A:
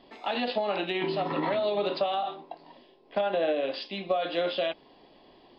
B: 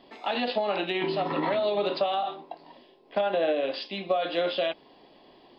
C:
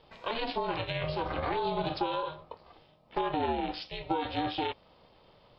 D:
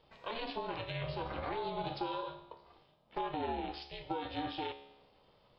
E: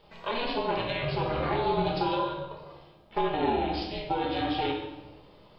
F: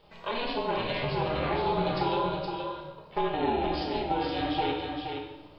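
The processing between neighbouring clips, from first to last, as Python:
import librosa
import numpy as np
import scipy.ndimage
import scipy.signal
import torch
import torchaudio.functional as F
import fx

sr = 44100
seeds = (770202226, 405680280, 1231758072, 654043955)

y1 = fx.low_shelf(x, sr, hz=81.0, db=-7.0)
y1 = y1 * librosa.db_to_amplitude(1.5)
y2 = y1 * np.sin(2.0 * np.pi * 230.0 * np.arange(len(y1)) / sr)
y2 = y2 * librosa.db_to_amplitude(-2.0)
y3 = fx.comb_fb(y2, sr, f0_hz=70.0, decay_s=0.93, harmonics='all', damping=0.0, mix_pct=70)
y3 = y3 * librosa.db_to_amplitude(1.5)
y4 = fx.room_shoebox(y3, sr, seeds[0], volume_m3=510.0, walls='mixed', distance_m=1.3)
y4 = y4 * librosa.db_to_amplitude(7.0)
y5 = y4 + 10.0 ** (-5.5 / 20.0) * np.pad(y4, (int(469 * sr / 1000.0), 0))[:len(y4)]
y5 = y5 * librosa.db_to_amplitude(-1.0)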